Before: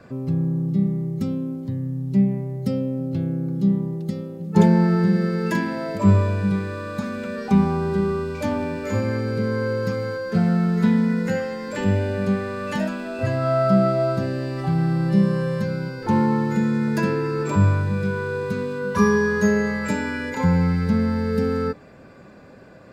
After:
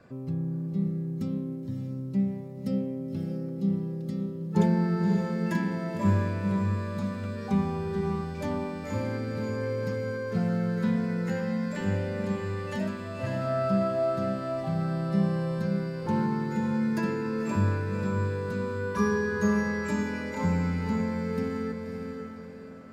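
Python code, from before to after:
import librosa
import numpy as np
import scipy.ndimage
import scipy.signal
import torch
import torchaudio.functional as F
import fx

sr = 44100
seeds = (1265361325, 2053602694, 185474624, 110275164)

p1 = x + fx.echo_diffused(x, sr, ms=566, feedback_pct=41, wet_db=-5.5, dry=0)
y = p1 * librosa.db_to_amplitude(-8.5)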